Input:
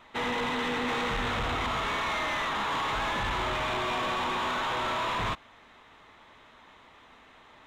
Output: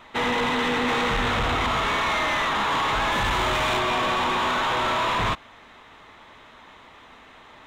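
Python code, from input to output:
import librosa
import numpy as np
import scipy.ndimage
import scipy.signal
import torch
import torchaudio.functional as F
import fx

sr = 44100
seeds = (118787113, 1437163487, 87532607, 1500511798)

y = fx.high_shelf(x, sr, hz=fx.line((3.11, 8300.0), (3.78, 5100.0)), db=7.5, at=(3.11, 3.78), fade=0.02)
y = y * librosa.db_to_amplitude(6.5)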